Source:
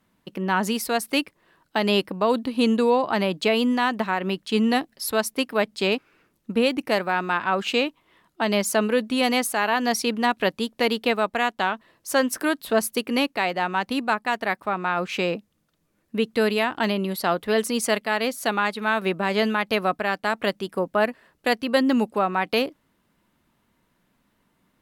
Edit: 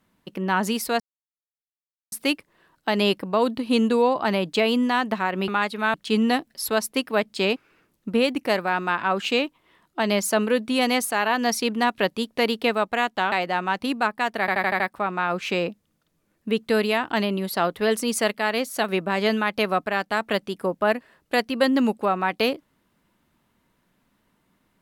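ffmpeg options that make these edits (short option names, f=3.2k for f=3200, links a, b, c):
-filter_complex "[0:a]asplit=11[a][b][c][d][e][f][g][h][i][j][k];[a]atrim=end=1,asetpts=PTS-STARTPTS,afade=t=out:st=0.996:d=0.004:c=hsin,apad=pad_dur=1.12[l];[b]atrim=start=1:end=4.362,asetpts=PTS-STARTPTS,afade=t=in:d=0.004:c=hsin[m];[c]atrim=start=18.508:end=18.972[n];[d]atrim=start=4.358:end=11.742[o];[e]atrim=start=13.388:end=14.552[p];[f]atrim=start=14.468:end=14.552[q];[g]atrim=start=14.468:end=14.552[r];[h]atrim=start=14.468:end=14.552[s];[i]atrim=start=14.468:end=14.552[t];[j]atrim=start=14.468:end=18.512[u];[k]atrim=start=18.968[v];[l][m]concat=n=2:v=0:a=1[w];[w][n]acrossfade=d=0.004:c1=hsin:c2=hsin[x];[x][o]acrossfade=d=0.004:c1=hsin:c2=hsin[y];[y][p]acrossfade=d=0.004:c1=hsin:c2=hsin[z];[z][q]acrossfade=d=0.004:c1=hsin:c2=hsin[aa];[aa][r]acrossfade=d=0.004:c1=hsin:c2=hsin[ab];[ab][s]acrossfade=d=0.004:c1=hsin:c2=hsin[ac];[ac][t]acrossfade=d=0.004:c1=hsin:c2=hsin[ad];[ad][u]acrossfade=d=0.004:c1=hsin:c2=hsin[ae];[ae][v]acrossfade=d=0.004:c1=hsin:c2=hsin"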